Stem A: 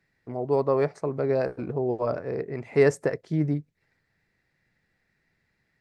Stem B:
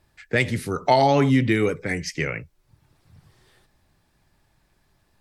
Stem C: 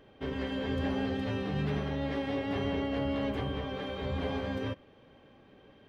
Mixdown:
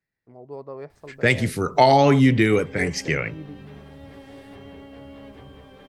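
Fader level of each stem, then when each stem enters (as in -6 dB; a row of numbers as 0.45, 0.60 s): -13.5, +2.5, -10.5 dB; 0.00, 0.90, 2.00 s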